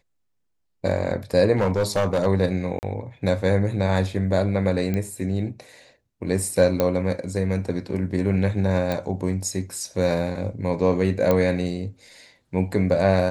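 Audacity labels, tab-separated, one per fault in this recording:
1.570000	2.270000	clipping −16 dBFS
2.790000	2.830000	drop-out 39 ms
4.940000	4.940000	click −14 dBFS
6.800000	6.800000	click −8 dBFS
8.920000	8.920000	click −13 dBFS
11.310000	11.310000	click −8 dBFS

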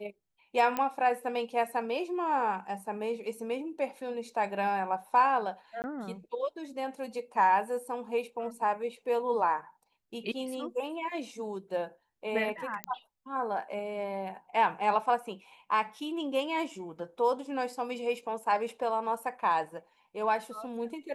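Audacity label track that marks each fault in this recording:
0.770000	0.770000	click −16 dBFS
5.820000	5.840000	drop-out 19 ms
12.840000	12.840000	click −17 dBFS

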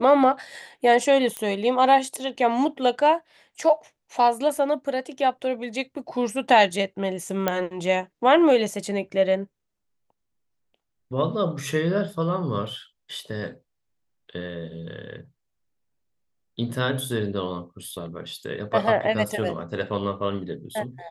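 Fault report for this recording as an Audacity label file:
1.370000	1.370000	click −14 dBFS
7.480000	7.480000	click −8 dBFS

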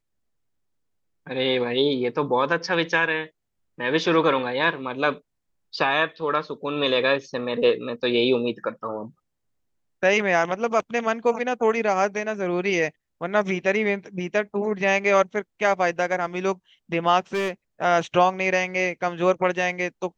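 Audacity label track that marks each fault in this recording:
17.340000	17.510000	clipping −21 dBFS

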